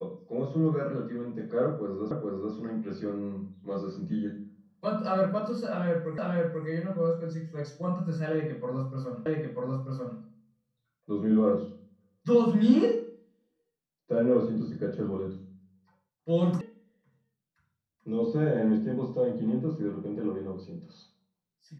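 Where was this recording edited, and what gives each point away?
2.11 s: repeat of the last 0.43 s
6.18 s: repeat of the last 0.49 s
9.26 s: repeat of the last 0.94 s
16.61 s: sound stops dead

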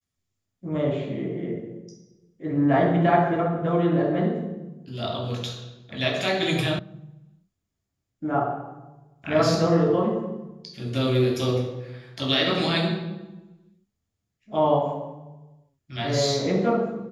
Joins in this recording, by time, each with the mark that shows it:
6.79 s: sound stops dead

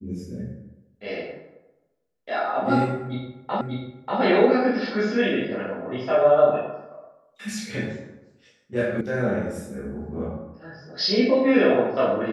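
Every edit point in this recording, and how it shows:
3.61 s: repeat of the last 0.59 s
9.01 s: sound stops dead

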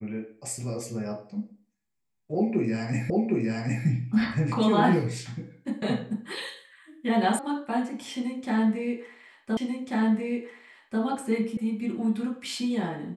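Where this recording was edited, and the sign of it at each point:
3.10 s: repeat of the last 0.76 s
7.39 s: sound stops dead
9.57 s: repeat of the last 1.44 s
11.57 s: sound stops dead

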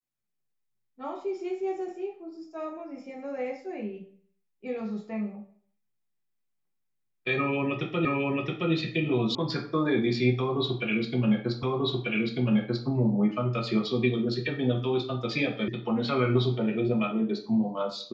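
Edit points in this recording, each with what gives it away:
8.05 s: repeat of the last 0.67 s
9.35 s: sound stops dead
11.63 s: repeat of the last 1.24 s
15.68 s: sound stops dead

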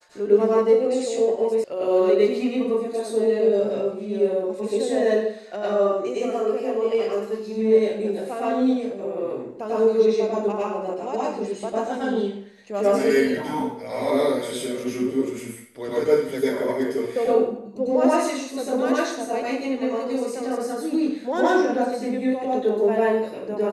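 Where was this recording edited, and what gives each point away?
1.64 s: sound stops dead

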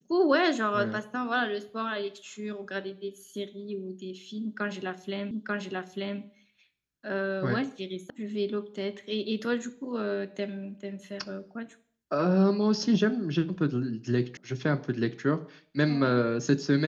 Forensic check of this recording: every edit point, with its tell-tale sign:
5.31 s: repeat of the last 0.89 s
8.10 s: sound stops dead
14.37 s: sound stops dead

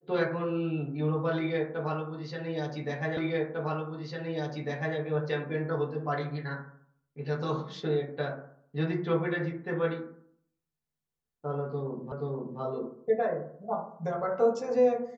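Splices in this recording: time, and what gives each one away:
3.17 s: repeat of the last 1.8 s
12.12 s: repeat of the last 0.48 s

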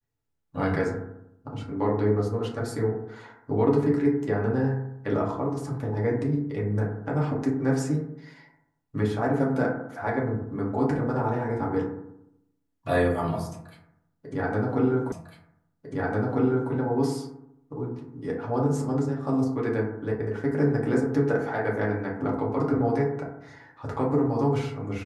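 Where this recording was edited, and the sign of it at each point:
15.12 s: repeat of the last 1.6 s

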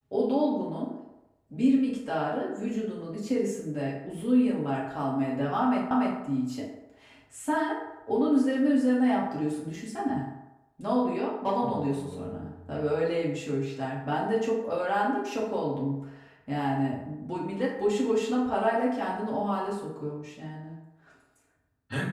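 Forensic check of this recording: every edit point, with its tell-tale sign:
5.91 s: repeat of the last 0.29 s

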